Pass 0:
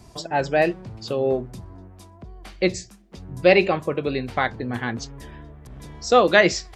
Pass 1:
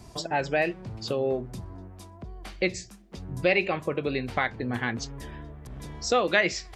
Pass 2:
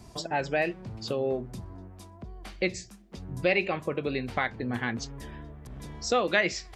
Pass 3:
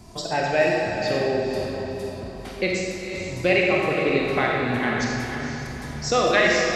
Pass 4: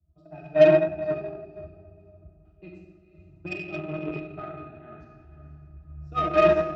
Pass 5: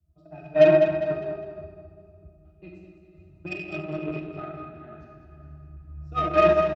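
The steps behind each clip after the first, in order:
dynamic bell 2.3 kHz, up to +7 dB, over -38 dBFS, Q 1.6; compression 2:1, threshold -27 dBFS, peak gain reduction 11 dB
peaking EQ 220 Hz +2.5 dB 0.33 oct; trim -2 dB
echo that smears into a reverb 485 ms, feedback 42%, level -7 dB; reverberation RT60 1.8 s, pre-delay 5 ms, DRR -2 dB; trim +3 dB
pitch-class resonator D#, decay 0.14 s; Chebyshev shaper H 7 -24 dB, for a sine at -14 dBFS; three bands expanded up and down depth 70%; trim +3 dB
feedback delay 202 ms, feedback 38%, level -9 dB

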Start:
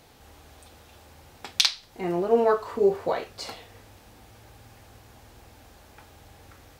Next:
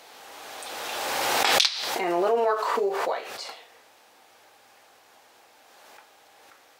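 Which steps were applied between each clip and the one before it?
high-pass 560 Hz 12 dB/octave; treble shelf 9.6 kHz -5.5 dB; swell ahead of each attack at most 20 dB/s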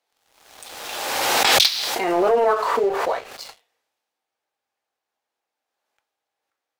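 waveshaping leveller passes 3; three bands expanded up and down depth 40%; trim -6.5 dB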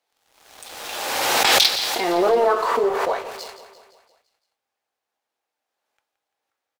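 feedback delay 171 ms, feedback 54%, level -13 dB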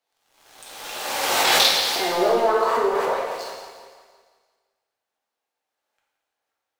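plate-style reverb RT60 1.5 s, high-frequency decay 0.9×, pre-delay 0 ms, DRR -1.5 dB; trim -4.5 dB

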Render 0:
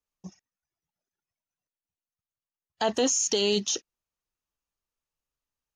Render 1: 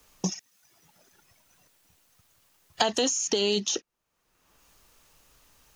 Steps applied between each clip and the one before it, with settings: three bands compressed up and down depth 100%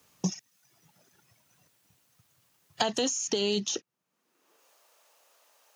high-pass sweep 120 Hz -> 600 Hz, 3.83–4.77 s; trim -3.5 dB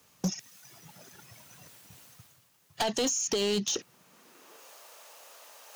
peaking EQ 320 Hz -2.5 dB 0.29 oct; reverse; upward compressor, threshold -43 dBFS; reverse; hard clipper -25.5 dBFS, distortion -11 dB; trim +2 dB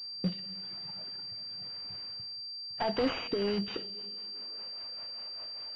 two-slope reverb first 0.27 s, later 2.9 s, from -18 dB, DRR 8 dB; rotary cabinet horn 0.9 Hz, later 5 Hz, at 3.00 s; class-D stage that switches slowly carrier 4.7 kHz

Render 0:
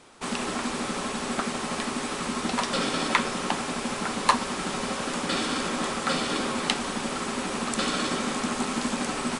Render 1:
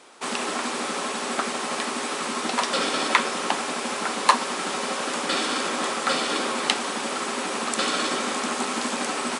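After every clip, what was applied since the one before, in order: high-pass 320 Hz 12 dB/octave; trim +3.5 dB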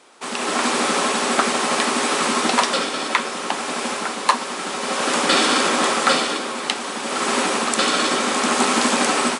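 level rider gain up to 12 dB; trim -1 dB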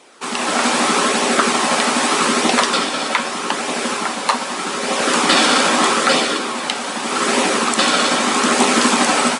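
flange 0.81 Hz, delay 0.3 ms, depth 1.2 ms, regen -62%; loudness maximiser +9 dB; trim -1 dB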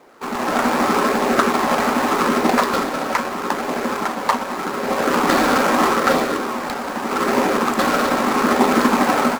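median filter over 15 samples; trim +1 dB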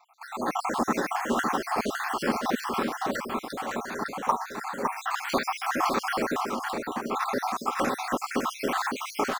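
random holes in the spectrogram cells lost 69%; delay 559 ms -4.5 dB; trim -6 dB

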